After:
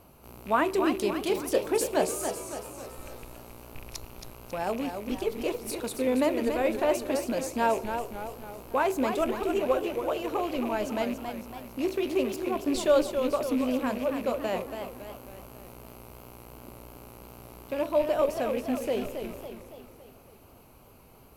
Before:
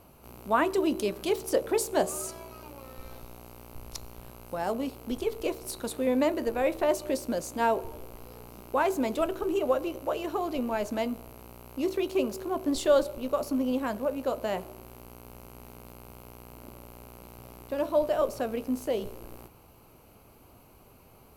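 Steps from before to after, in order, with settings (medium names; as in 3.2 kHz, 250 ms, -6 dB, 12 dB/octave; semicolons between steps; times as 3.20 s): rattle on loud lows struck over -41 dBFS, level -33 dBFS; modulated delay 277 ms, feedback 51%, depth 145 cents, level -7.5 dB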